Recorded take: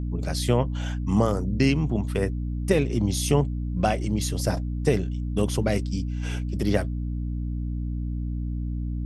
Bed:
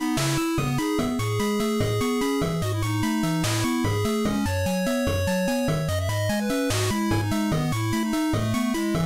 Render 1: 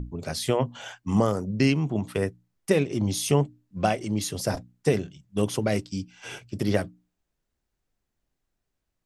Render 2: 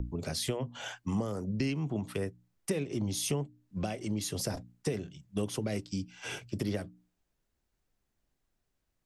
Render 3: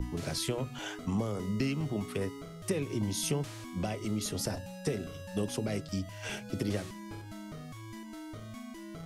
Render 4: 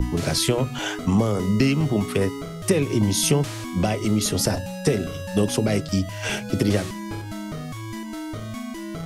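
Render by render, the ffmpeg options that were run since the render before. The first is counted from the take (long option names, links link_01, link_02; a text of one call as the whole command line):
ffmpeg -i in.wav -af "bandreject=frequency=60:width_type=h:width=6,bandreject=frequency=120:width_type=h:width=6,bandreject=frequency=180:width_type=h:width=6,bandreject=frequency=240:width_type=h:width=6,bandreject=frequency=300:width_type=h:width=6" out.wav
ffmpeg -i in.wav -filter_complex "[0:a]acompressor=threshold=-31dB:ratio=3,acrossover=split=310|470|2300[link_01][link_02][link_03][link_04];[link_03]alimiter=level_in=11dB:limit=-24dB:level=0:latency=1:release=72,volume=-11dB[link_05];[link_01][link_02][link_05][link_04]amix=inputs=4:normalize=0" out.wav
ffmpeg -i in.wav -i bed.wav -filter_complex "[1:a]volume=-20.5dB[link_01];[0:a][link_01]amix=inputs=2:normalize=0" out.wav
ffmpeg -i in.wav -af "volume=12dB" out.wav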